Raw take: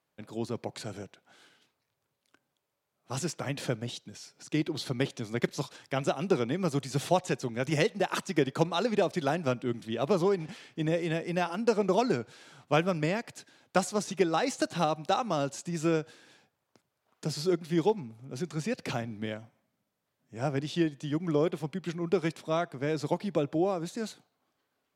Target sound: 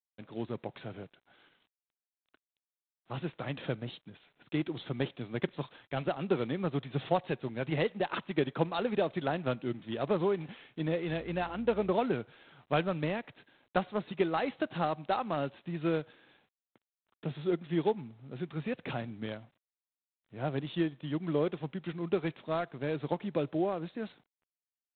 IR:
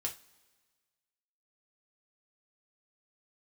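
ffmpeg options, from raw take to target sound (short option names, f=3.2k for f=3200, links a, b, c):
-filter_complex "[0:a]asettb=1/sr,asplit=3[a][b][c];[a]atrim=end=11.084[d];[b]atrim=start=11.08:end=11.92,asetpts=PTS-STARTPTS,afade=t=in:d=0.004:c=qsin,afade=t=out:st=0.836:d=0.004:c=qsin,aeval=exprs='val(0)+0.00398*(sin(2*PI*60*n/s)+sin(2*PI*2*60*n/s)/2+sin(2*PI*3*60*n/s)/3+sin(2*PI*4*60*n/s)/4+sin(2*PI*5*60*n/s)/5)':c=same[e];[c]atrim=start=11.916[f];[d][e]acrossfade=d=0.004:c1=hsin:c2=qsin[g];[g][f]acrossfade=d=0.004:c1=qsin:c2=hsin,volume=-3dB" -ar 8000 -c:a adpcm_g726 -b:a 24k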